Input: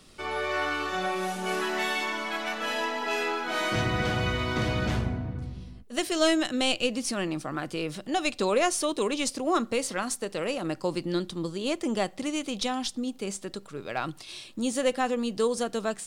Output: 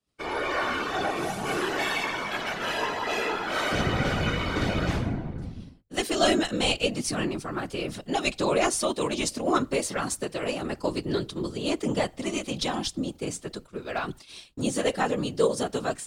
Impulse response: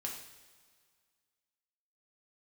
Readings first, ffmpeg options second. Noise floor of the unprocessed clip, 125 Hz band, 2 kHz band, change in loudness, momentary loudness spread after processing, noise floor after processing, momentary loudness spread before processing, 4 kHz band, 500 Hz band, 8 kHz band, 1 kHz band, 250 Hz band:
-50 dBFS, +1.0 dB, +1.0 dB, +1.0 dB, 9 LU, -53 dBFS, 8 LU, +1.0 dB, +1.0 dB, +1.0 dB, +1.0 dB, +0.5 dB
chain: -af "afftfilt=real='hypot(re,im)*cos(2*PI*random(0))':imag='hypot(re,im)*sin(2*PI*random(1))':win_size=512:overlap=0.75,agate=range=-33dB:threshold=-43dB:ratio=3:detection=peak,volume=7dB"

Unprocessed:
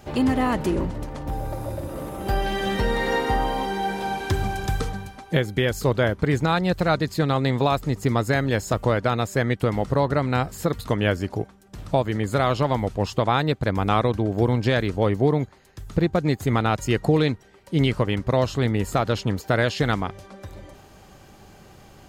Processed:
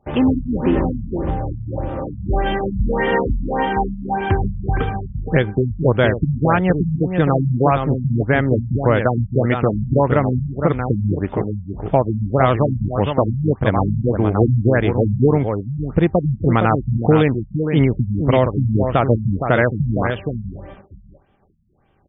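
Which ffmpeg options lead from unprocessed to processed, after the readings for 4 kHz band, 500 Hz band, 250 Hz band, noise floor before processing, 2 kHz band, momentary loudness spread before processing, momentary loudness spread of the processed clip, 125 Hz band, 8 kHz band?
-4.5 dB, +5.0 dB, +5.5 dB, -49 dBFS, +2.5 dB, 9 LU, 7 LU, +6.5 dB, under -40 dB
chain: -filter_complex "[0:a]asplit=2[a][b];[b]aecho=0:1:464:0.473[c];[a][c]amix=inputs=2:normalize=0,agate=range=-18dB:threshold=-43dB:ratio=16:detection=peak,afftfilt=real='re*lt(b*sr/1024,210*pow(3700/210,0.5+0.5*sin(2*PI*1.7*pts/sr)))':imag='im*lt(b*sr/1024,210*pow(3700/210,0.5+0.5*sin(2*PI*1.7*pts/sr)))':win_size=1024:overlap=0.75,volume=5.5dB"

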